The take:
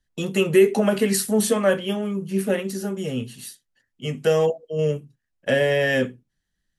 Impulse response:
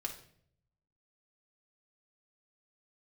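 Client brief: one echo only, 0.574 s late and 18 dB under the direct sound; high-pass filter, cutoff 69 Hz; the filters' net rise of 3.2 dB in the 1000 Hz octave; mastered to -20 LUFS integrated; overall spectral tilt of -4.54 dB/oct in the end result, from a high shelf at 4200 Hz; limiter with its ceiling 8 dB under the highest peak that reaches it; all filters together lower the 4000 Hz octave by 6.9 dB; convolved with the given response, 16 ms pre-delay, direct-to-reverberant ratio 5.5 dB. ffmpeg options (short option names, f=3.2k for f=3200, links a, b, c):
-filter_complex "[0:a]highpass=69,equalizer=f=1k:t=o:g=5,equalizer=f=4k:t=o:g=-8,highshelf=f=4.2k:g=-5,alimiter=limit=-13.5dB:level=0:latency=1,aecho=1:1:574:0.126,asplit=2[a][b];[1:a]atrim=start_sample=2205,adelay=16[c];[b][c]afir=irnorm=-1:irlink=0,volume=-5.5dB[d];[a][d]amix=inputs=2:normalize=0,volume=3dB"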